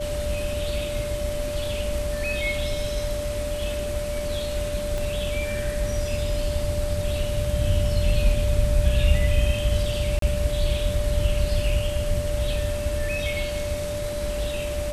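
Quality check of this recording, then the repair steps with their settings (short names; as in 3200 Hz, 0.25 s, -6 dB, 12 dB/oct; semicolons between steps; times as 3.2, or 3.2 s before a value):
tone 590 Hz -28 dBFS
4.98 pop
10.19–10.22 gap 33 ms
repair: de-click; notch 590 Hz, Q 30; interpolate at 10.19, 33 ms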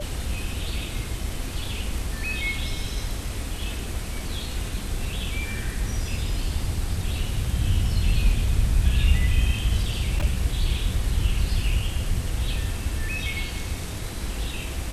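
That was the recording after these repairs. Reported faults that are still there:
4.98 pop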